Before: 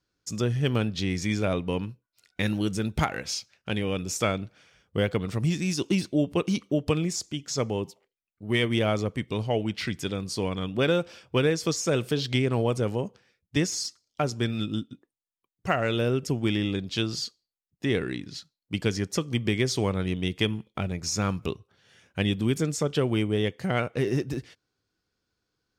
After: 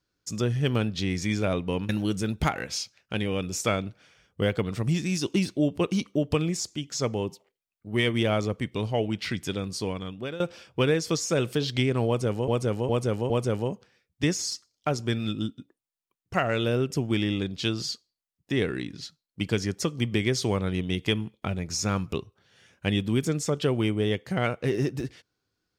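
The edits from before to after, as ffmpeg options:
ffmpeg -i in.wav -filter_complex "[0:a]asplit=6[link_01][link_02][link_03][link_04][link_05][link_06];[link_01]atrim=end=1.892[link_07];[link_02]atrim=start=2.448:end=10.96,asetpts=PTS-STARTPTS,afade=type=out:start_time=7.832:duration=0.68:silence=0.149624[link_08];[link_03]atrim=start=10.96:end=13.042,asetpts=PTS-STARTPTS,afade=type=in:duration=0.004:curve=hsin:silence=0.149624[link_09];[link_04]atrim=start=12.628:end=13.042[link_10];[link_05]atrim=start=12.628:end=13.042[link_11];[link_06]atrim=start=12.628[link_12];[link_08][link_09]concat=n=2:v=0:a=1[link_13];[link_07][link_13]acrossfade=duration=0.004:curve1=hsin:curve2=hsin[link_14];[link_14][link_10]acrossfade=duration=0.004:curve1=hsin:curve2=hsin[link_15];[link_15][link_11]acrossfade=duration=0.004:curve1=hsin:curve2=hsin[link_16];[link_16][link_12]acrossfade=duration=0.004:curve1=hsin:curve2=hsin" out.wav

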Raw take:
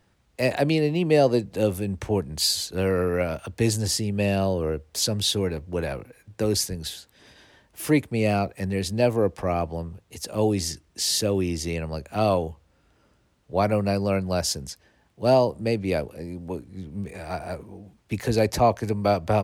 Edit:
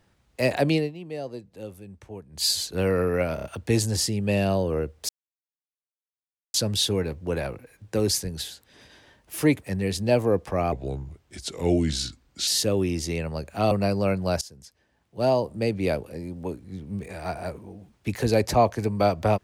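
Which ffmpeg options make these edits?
ffmpeg -i in.wav -filter_complex "[0:a]asplit=12[link_01][link_02][link_03][link_04][link_05][link_06][link_07][link_08][link_09][link_10][link_11][link_12];[link_01]atrim=end=0.92,asetpts=PTS-STARTPTS,afade=type=out:start_time=0.76:duration=0.16:silence=0.16788[link_13];[link_02]atrim=start=0.92:end=2.32,asetpts=PTS-STARTPTS,volume=-15.5dB[link_14];[link_03]atrim=start=2.32:end=3.382,asetpts=PTS-STARTPTS,afade=type=in:duration=0.16:silence=0.16788[link_15];[link_04]atrim=start=3.348:end=3.382[link_16];[link_05]atrim=start=3.348:end=3.382[link_17];[link_06]atrim=start=3.348:end=5,asetpts=PTS-STARTPTS,afade=type=out:start_time=1.648:duration=0.004:curve=hsin,apad=pad_dur=1.45[link_18];[link_07]atrim=start=5:end=8.092,asetpts=PTS-STARTPTS,afade=type=in:duration=0.004:curve=hsin[link_19];[link_08]atrim=start=8.538:end=9.634[link_20];[link_09]atrim=start=9.63:end=11.05,asetpts=PTS-STARTPTS,asetrate=35721,aresample=44100,atrim=end_sample=77311,asetpts=PTS-STARTPTS[link_21];[link_10]atrim=start=11.046:end=12.292[link_22];[link_11]atrim=start=13.758:end=14.46,asetpts=PTS-STARTPTS,afade=type=out:start_time=0.698:duration=0.004:curve=hsin:silence=0.112202[link_23];[link_12]atrim=start=14.46,asetpts=PTS-STARTPTS,afade=type=in:duration=1.39:silence=0.112202[link_24];[link_13][link_14][link_15]concat=n=3:v=0:a=1[link_25];[link_25][link_16]acrossfade=duration=0.004:curve1=hsin:curve2=hsin[link_26];[link_26][link_17]acrossfade=duration=0.004:curve1=hsin:curve2=hsin[link_27];[link_18][link_19]concat=n=2:v=0:a=1[link_28];[link_27][link_28]acrossfade=duration=0.004:curve1=hsin:curve2=hsin[link_29];[link_29][link_20]acrossfade=duration=0.004:curve1=hsin:curve2=hsin[link_30];[link_30][link_21]acrossfade=duration=0.004:curve1=hsin:curve2=hsin[link_31];[link_31][link_22]acrossfade=duration=0.004:curve1=hsin:curve2=hsin[link_32];[link_23][link_24]concat=n=2:v=0:a=1[link_33];[link_32][link_33]acrossfade=duration=0.004:curve1=hsin:curve2=hsin" out.wav

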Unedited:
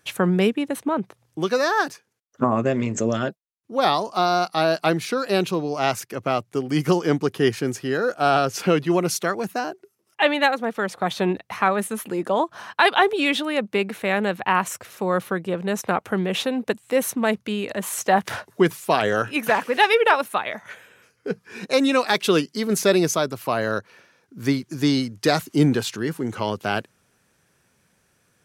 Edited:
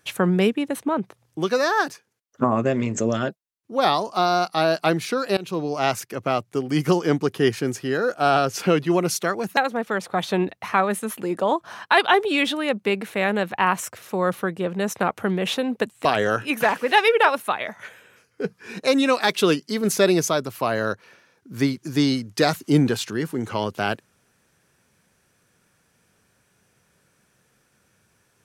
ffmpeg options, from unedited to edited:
ffmpeg -i in.wav -filter_complex "[0:a]asplit=4[link_01][link_02][link_03][link_04];[link_01]atrim=end=5.37,asetpts=PTS-STARTPTS,afade=type=out:start_time=5.366:duration=0.004:curve=hsin:silence=0.0707946[link_05];[link_02]atrim=start=5.37:end=9.572,asetpts=PTS-STARTPTS,afade=type=in:duration=0.25:silence=0.0707946[link_06];[link_03]atrim=start=10.448:end=16.932[link_07];[link_04]atrim=start=18.908[link_08];[link_05][link_06]concat=n=2:v=0:a=1[link_09];[link_09][link_07]acrossfade=duration=0.004:curve1=hsin:curve2=hsin[link_10];[link_10][link_08]acrossfade=duration=0.004:curve1=hsin:curve2=hsin" out.wav

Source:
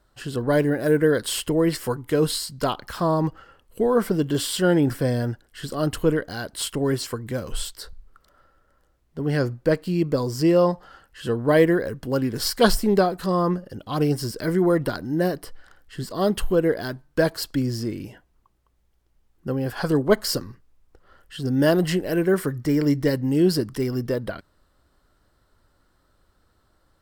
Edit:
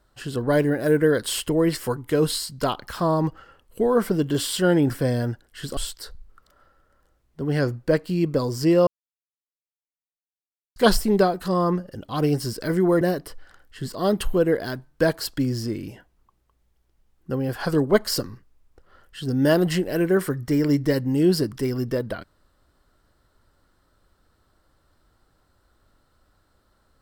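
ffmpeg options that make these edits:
ffmpeg -i in.wav -filter_complex "[0:a]asplit=5[link_01][link_02][link_03][link_04][link_05];[link_01]atrim=end=5.772[link_06];[link_02]atrim=start=7.548:end=10.65,asetpts=PTS-STARTPTS,afade=type=out:start_time=3.098:duration=0.004:curve=hsin[link_07];[link_03]atrim=start=10.65:end=12.54,asetpts=PTS-STARTPTS,volume=0[link_08];[link_04]atrim=start=12.54:end=14.792,asetpts=PTS-STARTPTS,afade=type=in:duration=0.004:curve=hsin[link_09];[link_05]atrim=start=15.178[link_10];[link_07][link_08][link_09]concat=n=3:v=0:a=1[link_11];[link_06][link_11]acrossfade=duration=0.004:curve1=hsin:curve2=hsin[link_12];[link_12][link_10]acrossfade=duration=0.004:curve1=hsin:curve2=hsin" out.wav

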